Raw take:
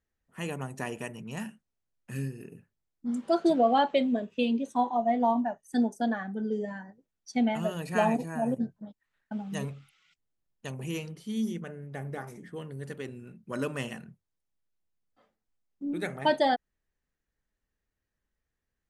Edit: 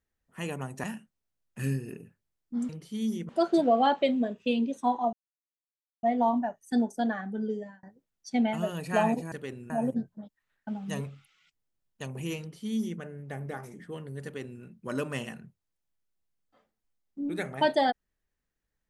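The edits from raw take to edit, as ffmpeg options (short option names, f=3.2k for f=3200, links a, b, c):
-filter_complex "[0:a]asplit=10[a][b][c][d][e][f][g][h][i][j];[a]atrim=end=0.842[k];[b]atrim=start=1.358:end=2.112[l];[c]atrim=start=2.108:end=2.522,asetpts=PTS-STARTPTS,volume=4dB[m];[d]atrim=start=2.518:end=3.212[n];[e]atrim=start=11.038:end=11.642[o];[f]atrim=start=3.208:end=5.05,asetpts=PTS-STARTPTS,afade=t=out:st=1.838:d=0.004:c=hsin,apad=pad_dur=0.9[p];[g]atrim=start=5.05:end=6.85,asetpts=PTS-STARTPTS,afade=t=in:d=0.004:c=hsin,afade=t=out:st=1.43:d=0.37[q];[h]atrim=start=6.85:end=8.342,asetpts=PTS-STARTPTS,afade=t=in:d=0.004:c=hsin[r];[i]atrim=start=12.878:end=13.262[s];[j]atrim=start=8.338[t];[k][l]acrossfade=d=0.004:c1=hsin:c2=hsin[u];[u][m]acrossfade=d=0.004:c1=hsin:c2=hsin[v];[v][n]acrossfade=d=0.004:c1=hsin:c2=hsin[w];[w][o]acrossfade=d=0.004:c1=hsin:c2=hsin[x];[p][q][r]concat=n=3:v=0:a=1[y];[x][y]acrossfade=d=0.004:c1=hsin:c2=hsin[z];[z][s]acrossfade=d=0.004:c1=hsin:c2=hsin[aa];[aa][t]acrossfade=d=0.004:c1=hsin:c2=hsin"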